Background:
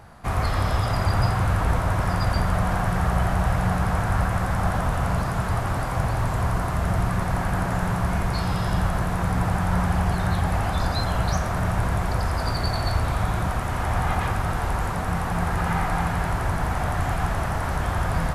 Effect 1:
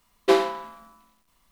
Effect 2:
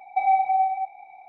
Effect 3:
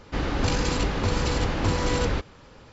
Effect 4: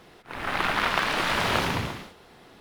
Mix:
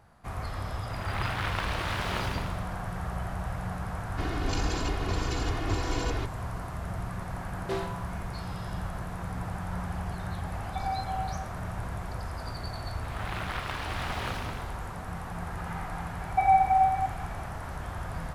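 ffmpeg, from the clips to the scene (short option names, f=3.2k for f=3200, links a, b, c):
-filter_complex "[4:a]asplit=2[a][b];[2:a]asplit=2[c][d];[0:a]volume=-12dB[e];[3:a]aecho=1:1:2.8:0.93[f];[1:a]asoftclip=type=tanh:threshold=-16dB[g];[a]atrim=end=2.6,asetpts=PTS-STARTPTS,volume=-8.5dB,afade=t=in:d=0.004:c=hsin,afade=t=out:st=2.596:d=0.004:c=hsin,adelay=610[h];[f]atrim=end=2.72,asetpts=PTS-STARTPTS,volume=-9dB,afade=t=in:d=0.004:c=hsin,afade=t=out:st=2.716:d=0.004:c=hsin,adelay=178605S[i];[g]atrim=end=1.51,asetpts=PTS-STARTPTS,volume=-10.5dB,afade=t=in:d=0.004:c=hsin,afade=t=out:st=1.506:d=0.004:c=hsin,adelay=7410[j];[c]atrim=end=1.28,asetpts=PTS-STARTPTS,volume=-13dB,afade=t=in:d=0.004:c=hsin,afade=t=out:st=1.276:d=0.004:c=hsin,adelay=10590[k];[b]atrim=end=2.6,asetpts=PTS-STARTPTS,volume=-11.5dB,afade=t=in:d=0.004:c=hsin,afade=t=out:st=2.596:d=0.004:c=hsin,adelay=12720[l];[d]atrim=end=1.28,asetpts=PTS-STARTPTS,volume=-1dB,afade=t=in:d=0.004:c=hsin,afade=t=out:st=1.276:d=0.004:c=hsin,adelay=16210[m];[e][h][i][j][k][l][m]amix=inputs=7:normalize=0"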